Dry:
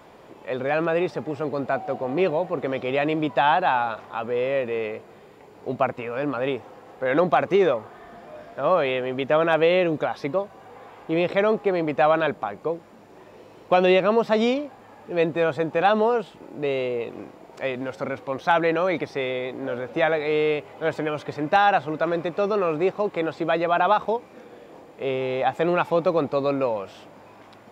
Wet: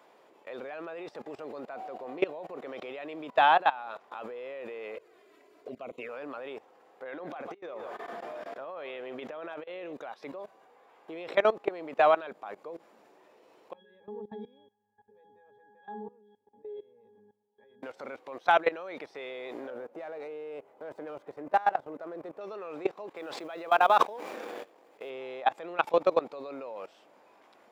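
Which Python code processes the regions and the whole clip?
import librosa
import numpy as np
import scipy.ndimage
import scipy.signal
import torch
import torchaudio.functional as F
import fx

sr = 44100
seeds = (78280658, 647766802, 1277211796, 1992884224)

y = fx.chain(x, sr, fx.env_flanger(rest_ms=3.7, full_db=-23.0),
    fx.peak_eq(hz=850.0, db=-12.0, octaves=0.27), at=(4.95, 6.09))
y = fx.chain(y, sr, fx.high_shelf(hz=5300.0, db=-5.0),
    fx.echo_single(ms=149, db=-19.5),
    fx.over_compress(threshold_db=-26.0, ratio=-0.5), at=(7.03, 9.93))
y = fx.chain(y, sr, fx.low_shelf(hz=220.0, db=9.5),
    fx.octave_resonator(note='G#', decay_s=0.46), at=(13.73, 17.83))
y = fx.chain(y, sr, fx.peak_eq(hz=3800.0, db=-14.0, octaves=2.5),
    fx.running_max(window=3), at=(19.7, 22.41))
y = fx.chain(y, sr, fx.law_mismatch(coded='A'),
    fx.low_shelf(hz=120.0, db=-7.0),
    fx.sustainer(db_per_s=33.0), at=(23.14, 25.1))
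y = scipy.signal.sosfilt(scipy.signal.butter(2, 350.0, 'highpass', fs=sr, output='sos'), y)
y = fx.level_steps(y, sr, step_db=20)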